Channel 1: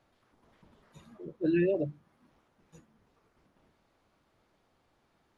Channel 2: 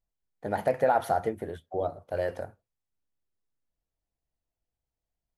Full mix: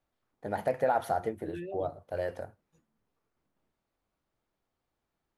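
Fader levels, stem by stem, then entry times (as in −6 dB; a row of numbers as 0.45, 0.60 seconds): −13.5, −3.5 decibels; 0.00, 0.00 seconds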